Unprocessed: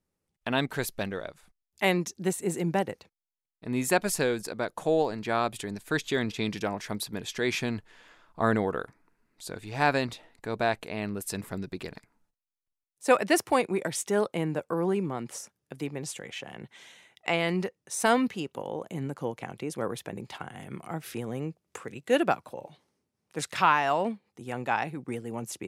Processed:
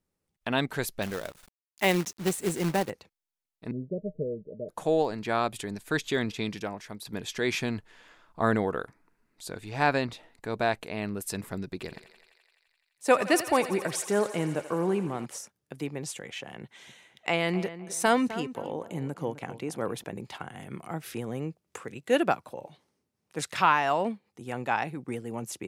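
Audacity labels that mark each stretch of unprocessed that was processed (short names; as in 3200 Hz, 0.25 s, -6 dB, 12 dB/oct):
1.020000	2.900000	companded quantiser 4-bit
3.710000	4.690000	rippled Chebyshev low-pass 630 Hz, ripple 9 dB
6.220000	7.050000	fade out, to -10 dB
9.680000	10.130000	LPF 10000 Hz -> 3900 Hz 6 dB/oct
11.730000	15.260000	thinning echo 85 ms, feedback 81%, high-pass 430 Hz, level -12.5 dB
16.620000	20.040000	darkening echo 0.257 s, feedback 31%, low-pass 2200 Hz, level -13 dB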